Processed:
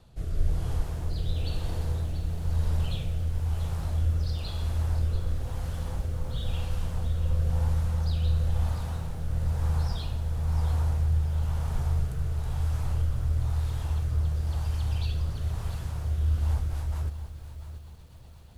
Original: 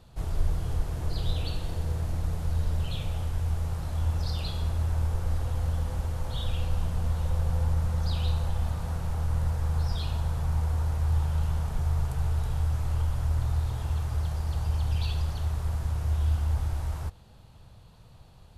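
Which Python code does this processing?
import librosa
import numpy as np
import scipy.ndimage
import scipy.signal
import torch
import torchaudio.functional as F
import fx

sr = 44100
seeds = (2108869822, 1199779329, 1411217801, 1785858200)

y = fx.rotary_switch(x, sr, hz=1.0, then_hz=8.0, switch_at_s=16.26)
y = fx.echo_crushed(y, sr, ms=687, feedback_pct=35, bits=9, wet_db=-11.5)
y = F.gain(torch.from_numpy(y), 1.0).numpy()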